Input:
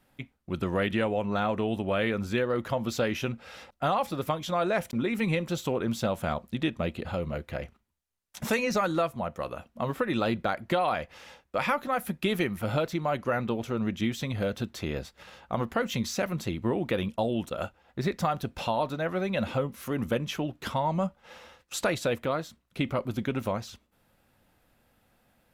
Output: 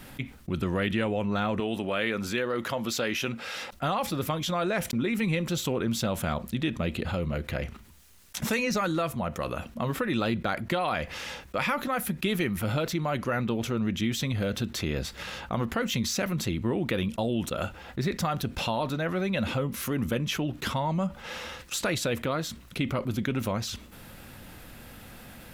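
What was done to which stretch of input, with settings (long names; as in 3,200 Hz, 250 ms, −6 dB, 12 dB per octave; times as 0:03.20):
0:01.60–0:03.73: high-pass filter 370 Hz 6 dB per octave
whole clip: de-essing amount 65%; parametric band 710 Hz −5.5 dB 1.6 octaves; envelope flattener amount 50%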